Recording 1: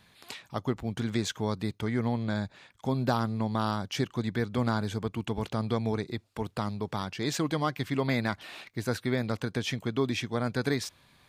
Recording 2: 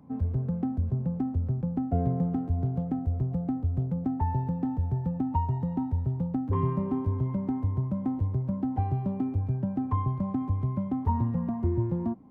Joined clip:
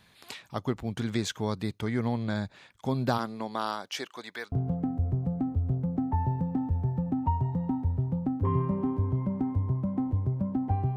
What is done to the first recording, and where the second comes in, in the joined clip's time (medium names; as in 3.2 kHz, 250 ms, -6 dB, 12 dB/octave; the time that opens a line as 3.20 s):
recording 1
3.17–4.52 s: high-pass 240 Hz -> 850 Hz
4.52 s: go over to recording 2 from 2.60 s